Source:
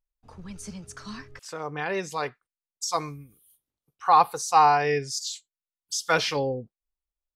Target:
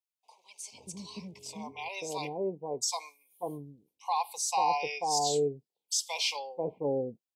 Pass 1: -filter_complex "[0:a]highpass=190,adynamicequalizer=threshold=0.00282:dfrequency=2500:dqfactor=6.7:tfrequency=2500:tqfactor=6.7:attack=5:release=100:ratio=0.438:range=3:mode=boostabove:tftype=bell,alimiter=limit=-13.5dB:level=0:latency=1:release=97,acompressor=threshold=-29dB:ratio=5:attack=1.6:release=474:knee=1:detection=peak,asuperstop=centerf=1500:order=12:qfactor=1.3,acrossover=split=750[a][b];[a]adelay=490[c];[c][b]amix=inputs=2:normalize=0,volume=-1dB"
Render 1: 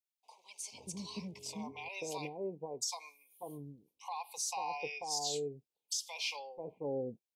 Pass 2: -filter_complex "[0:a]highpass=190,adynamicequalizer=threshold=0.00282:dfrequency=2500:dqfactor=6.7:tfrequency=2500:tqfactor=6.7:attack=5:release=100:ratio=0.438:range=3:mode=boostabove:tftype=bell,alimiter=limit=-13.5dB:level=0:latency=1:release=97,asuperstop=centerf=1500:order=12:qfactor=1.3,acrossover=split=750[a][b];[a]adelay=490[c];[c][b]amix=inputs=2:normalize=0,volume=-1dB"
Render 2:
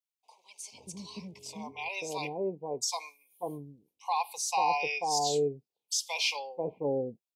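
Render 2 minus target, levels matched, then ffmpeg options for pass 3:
2000 Hz band +4.0 dB
-filter_complex "[0:a]highpass=190,adynamicequalizer=threshold=0.00282:dfrequency=7900:dqfactor=6.7:tfrequency=7900:tqfactor=6.7:attack=5:release=100:ratio=0.438:range=3:mode=boostabove:tftype=bell,alimiter=limit=-13.5dB:level=0:latency=1:release=97,asuperstop=centerf=1500:order=12:qfactor=1.3,acrossover=split=750[a][b];[a]adelay=490[c];[c][b]amix=inputs=2:normalize=0,volume=-1dB"

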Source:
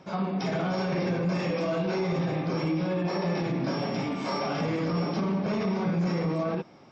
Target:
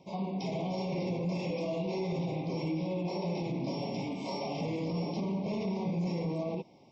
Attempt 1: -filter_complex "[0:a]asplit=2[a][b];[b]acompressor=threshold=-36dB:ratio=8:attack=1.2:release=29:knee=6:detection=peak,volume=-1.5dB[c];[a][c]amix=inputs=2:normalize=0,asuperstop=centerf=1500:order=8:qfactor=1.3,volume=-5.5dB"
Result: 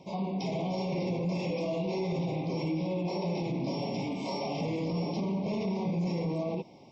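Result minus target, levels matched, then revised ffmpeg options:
compressor: peak gain reduction +13.5 dB
-af "asuperstop=centerf=1500:order=8:qfactor=1.3,volume=-5.5dB"

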